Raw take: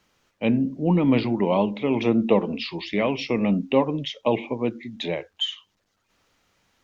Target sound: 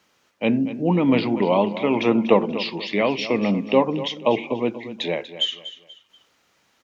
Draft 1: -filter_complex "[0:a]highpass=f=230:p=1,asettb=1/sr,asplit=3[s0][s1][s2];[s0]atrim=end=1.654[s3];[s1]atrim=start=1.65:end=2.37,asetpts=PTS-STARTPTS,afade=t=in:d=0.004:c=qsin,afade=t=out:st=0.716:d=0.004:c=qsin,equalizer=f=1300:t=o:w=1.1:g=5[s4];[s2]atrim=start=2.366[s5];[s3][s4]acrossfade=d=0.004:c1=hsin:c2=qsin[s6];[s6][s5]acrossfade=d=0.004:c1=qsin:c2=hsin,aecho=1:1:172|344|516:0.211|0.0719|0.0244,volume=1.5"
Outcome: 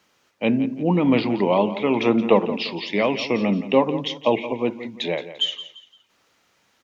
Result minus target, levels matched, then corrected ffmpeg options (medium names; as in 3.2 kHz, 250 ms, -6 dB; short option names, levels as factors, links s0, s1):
echo 69 ms early
-filter_complex "[0:a]highpass=f=230:p=1,asettb=1/sr,asplit=3[s0][s1][s2];[s0]atrim=end=1.654[s3];[s1]atrim=start=1.65:end=2.37,asetpts=PTS-STARTPTS,afade=t=in:d=0.004:c=qsin,afade=t=out:st=0.716:d=0.004:c=qsin,equalizer=f=1300:t=o:w=1.1:g=5[s4];[s2]atrim=start=2.366[s5];[s3][s4]acrossfade=d=0.004:c1=hsin:c2=qsin[s6];[s6][s5]acrossfade=d=0.004:c1=qsin:c2=hsin,aecho=1:1:241|482|723:0.211|0.0719|0.0244,volume=1.5"